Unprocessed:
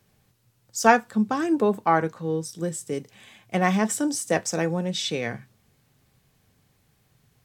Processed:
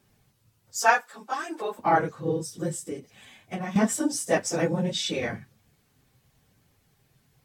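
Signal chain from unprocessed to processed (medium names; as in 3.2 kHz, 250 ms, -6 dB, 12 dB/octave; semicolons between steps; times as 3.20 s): phase randomisation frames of 50 ms; 0.79–1.79 s: high-pass 760 Hz 12 dB/octave; 2.78–3.76 s: compression 4:1, threshold -31 dBFS, peak gain reduction 12 dB; trim -1 dB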